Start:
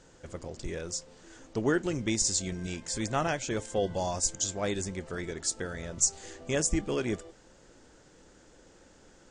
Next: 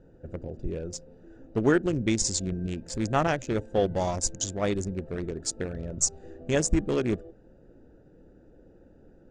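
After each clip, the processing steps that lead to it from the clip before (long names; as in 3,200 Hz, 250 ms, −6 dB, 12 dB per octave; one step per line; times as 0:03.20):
adaptive Wiener filter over 41 samples
high-shelf EQ 5,900 Hz −8 dB
level +5.5 dB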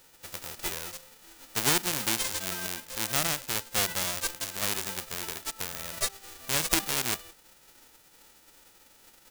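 spectral envelope flattened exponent 0.1
level −3.5 dB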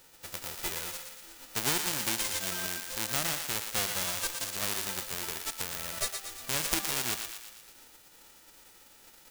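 downward compressor 1.5 to 1, threshold −33 dBFS, peak gain reduction 5.5 dB
feedback echo with a high-pass in the loop 117 ms, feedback 57%, high-pass 760 Hz, level −6 dB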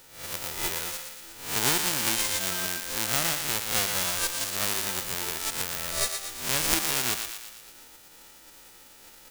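peak hold with a rise ahead of every peak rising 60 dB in 0.53 s
level +3 dB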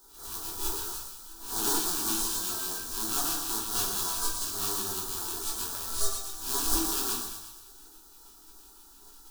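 phaser with its sweep stopped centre 560 Hz, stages 6
auto-filter notch square 6 Hz 580–2,700 Hz
rectangular room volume 67 cubic metres, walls mixed, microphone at 1.1 metres
level −5.5 dB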